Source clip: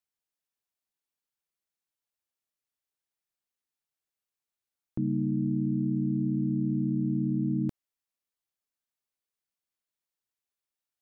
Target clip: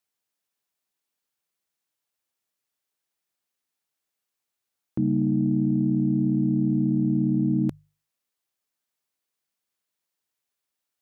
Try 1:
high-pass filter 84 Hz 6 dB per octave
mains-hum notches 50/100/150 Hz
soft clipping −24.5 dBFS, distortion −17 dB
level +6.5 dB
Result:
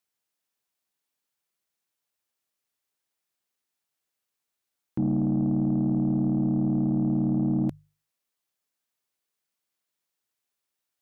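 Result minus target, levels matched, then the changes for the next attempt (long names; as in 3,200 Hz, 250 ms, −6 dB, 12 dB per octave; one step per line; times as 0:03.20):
soft clipping: distortion +16 dB
change: soft clipping −14.5 dBFS, distortion −33 dB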